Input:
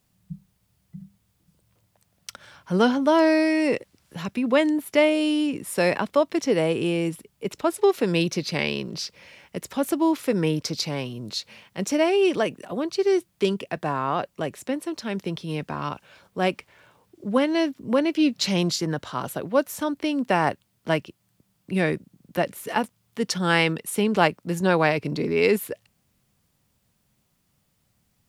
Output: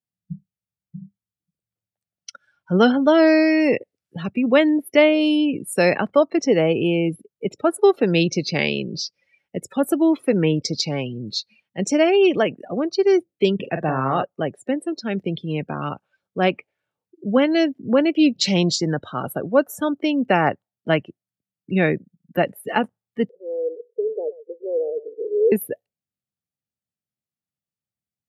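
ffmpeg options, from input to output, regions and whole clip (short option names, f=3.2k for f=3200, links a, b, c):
-filter_complex "[0:a]asettb=1/sr,asplit=3[a][b][c];[a]atrim=end=13.554[d];[b]atrim=start=13.55:end=14.23,asetpts=PTS-STARTPTS,afade=t=in:d=0.004:c=qsin,afade=t=out:st=0.676:d=0.004:c=qsin,lowshelf=f=120:g=5.5,asoftclip=type=hard:threshold=-14dB,asplit=2[e][f];[f]adelay=45,volume=-7dB[g];[e][g]amix=inputs=2:normalize=0,atrim=end_sample=29988[h];[c]atrim=start=14.226[i];[d][h]acrossfade=d=0.004:c1=hsin:c2=qsin[j];[j][i]acrossfade=d=0.004:c1=qsin:c2=hsin,asettb=1/sr,asplit=3[k][l][m];[k]atrim=end=23.294[n];[l]atrim=start=23.29:end=25.52,asetpts=PTS-STARTPTS,afade=t=in:d=0.004:c=qsin,afade=t=out:st=2.226:d=0.004:c=qsin,asuperpass=centerf=460:order=4:qfactor=4.3,aecho=1:1:123:0.168,atrim=end_sample=98343[o];[m]atrim=start=25.516[p];[n][o]acrossfade=d=0.004:c1=hsin:c2=qsin[q];[q][p]acrossfade=d=0.004:c1=qsin:c2=hsin,afftdn=nr=30:nf=-36,highpass=80,bandreject=f=1k:w=5.5,volume=4.5dB"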